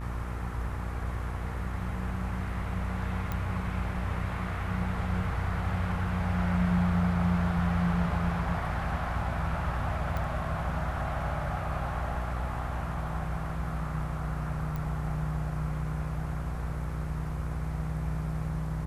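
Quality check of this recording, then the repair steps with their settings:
buzz 60 Hz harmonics 34 -35 dBFS
3.32 s: pop -19 dBFS
10.17 s: pop -21 dBFS
14.76 s: pop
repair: de-click; de-hum 60 Hz, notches 34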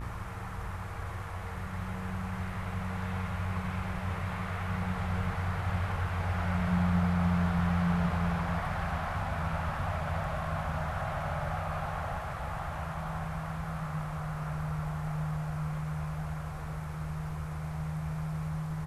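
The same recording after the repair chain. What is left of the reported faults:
3.32 s: pop

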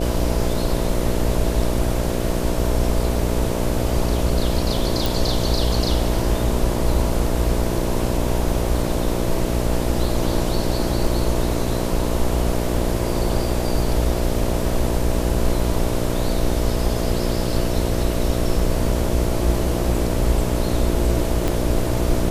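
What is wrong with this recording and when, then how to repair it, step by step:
buzz 60 Hz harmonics 11 -24 dBFS
5.06 s: pop
21.48 s: pop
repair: de-click; de-hum 60 Hz, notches 11

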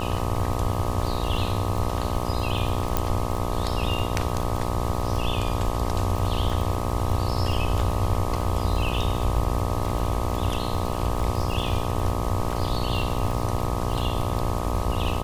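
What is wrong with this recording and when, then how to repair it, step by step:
buzz 60 Hz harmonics 21 -29 dBFS
crackle 39 per s -28 dBFS
2.97 s: pop -7 dBFS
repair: de-click; de-hum 60 Hz, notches 21

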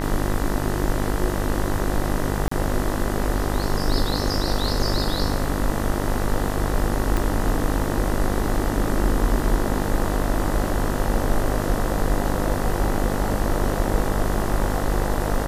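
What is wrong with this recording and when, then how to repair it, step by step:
buzz 50 Hz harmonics 40 -26 dBFS
2.48–2.51 s: dropout 34 ms
7.17 s: pop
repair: de-click; de-hum 50 Hz, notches 40; interpolate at 2.48 s, 34 ms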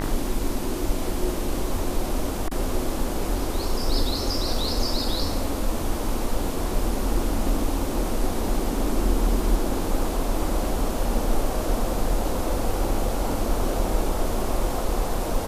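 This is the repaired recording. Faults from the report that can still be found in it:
7.17 s: pop

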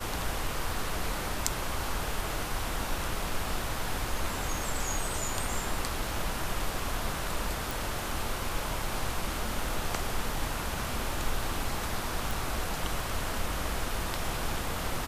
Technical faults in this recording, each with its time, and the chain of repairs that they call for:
7.71 s: pop
12.31 s: pop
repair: de-click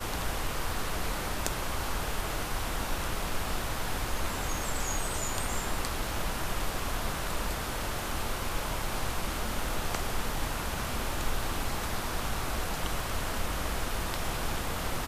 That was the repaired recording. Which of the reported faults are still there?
nothing left

